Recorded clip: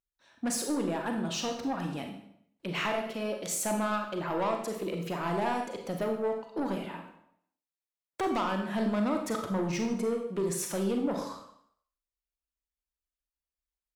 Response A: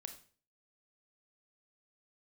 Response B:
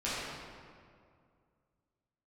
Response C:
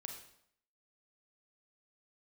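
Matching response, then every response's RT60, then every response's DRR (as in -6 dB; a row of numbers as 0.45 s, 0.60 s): C; 0.40 s, 2.2 s, 0.70 s; 6.0 dB, -11.0 dB, 3.0 dB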